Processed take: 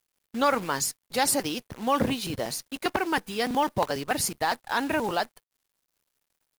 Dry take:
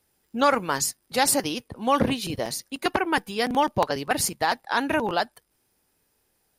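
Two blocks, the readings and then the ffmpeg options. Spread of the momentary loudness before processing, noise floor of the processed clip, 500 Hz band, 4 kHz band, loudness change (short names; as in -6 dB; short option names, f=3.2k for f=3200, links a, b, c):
8 LU, -83 dBFS, -2.5 dB, -2.5 dB, -2.5 dB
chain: -filter_complex "[0:a]asplit=2[a][b];[b]asoftclip=type=tanh:threshold=-26dB,volume=-8.5dB[c];[a][c]amix=inputs=2:normalize=0,acrusher=bits=7:dc=4:mix=0:aa=0.000001,volume=-4dB"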